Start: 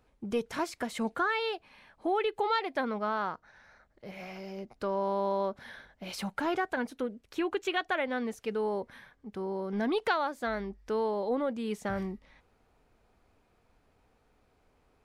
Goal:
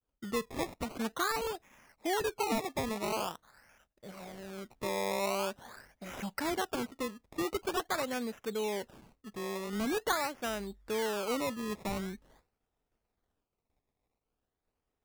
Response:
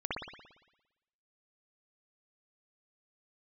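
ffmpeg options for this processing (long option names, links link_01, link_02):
-af "acrusher=samples=20:mix=1:aa=0.000001:lfo=1:lforange=20:lforate=0.45,agate=range=-33dB:threshold=-57dB:ratio=3:detection=peak,volume=-3dB"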